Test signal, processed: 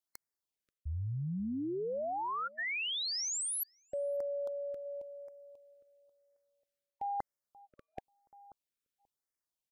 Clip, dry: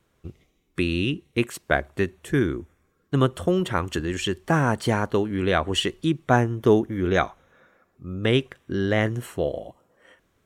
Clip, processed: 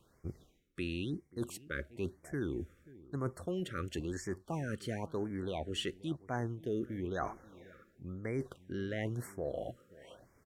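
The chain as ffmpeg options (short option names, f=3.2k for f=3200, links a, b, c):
-filter_complex "[0:a]areverse,acompressor=threshold=-37dB:ratio=4,areverse,asplit=2[a][b];[b]adelay=534,lowpass=f=1k:p=1,volume=-19dB,asplit=2[c][d];[d]adelay=534,lowpass=f=1k:p=1,volume=0.15[e];[a][c][e]amix=inputs=3:normalize=0,afftfilt=real='re*(1-between(b*sr/1024,800*pow(3400/800,0.5+0.5*sin(2*PI*0.99*pts/sr))/1.41,800*pow(3400/800,0.5+0.5*sin(2*PI*0.99*pts/sr))*1.41))':imag='im*(1-between(b*sr/1024,800*pow(3400/800,0.5+0.5*sin(2*PI*0.99*pts/sr))/1.41,800*pow(3400/800,0.5+0.5*sin(2*PI*0.99*pts/sr))*1.41))':win_size=1024:overlap=0.75"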